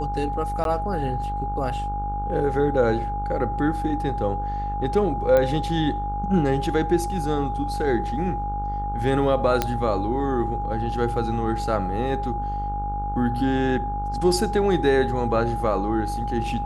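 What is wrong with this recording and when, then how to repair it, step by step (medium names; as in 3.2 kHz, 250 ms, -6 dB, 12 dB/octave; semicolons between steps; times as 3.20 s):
buzz 50 Hz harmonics 30 -30 dBFS
whine 820 Hz -27 dBFS
0.64–0.65 s: dropout 12 ms
5.37 s: pop -10 dBFS
9.62 s: pop -6 dBFS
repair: de-click; de-hum 50 Hz, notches 30; band-stop 820 Hz, Q 30; interpolate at 0.64 s, 12 ms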